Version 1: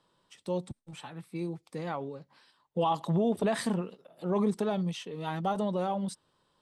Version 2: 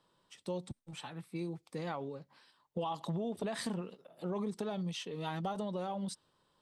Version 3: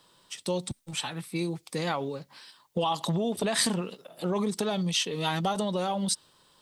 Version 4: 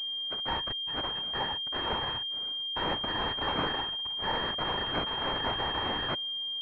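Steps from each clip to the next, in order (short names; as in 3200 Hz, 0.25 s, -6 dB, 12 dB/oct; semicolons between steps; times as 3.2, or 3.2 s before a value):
dynamic EQ 4600 Hz, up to +4 dB, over -55 dBFS, Q 0.85; compressor 5:1, threshold -32 dBFS, peak gain reduction 8.5 dB; gain -2 dB
high shelf 2400 Hz +11 dB; gain +8 dB
FFT order left unsorted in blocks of 256 samples; whisperiser; pulse-width modulation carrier 3200 Hz; gain +1 dB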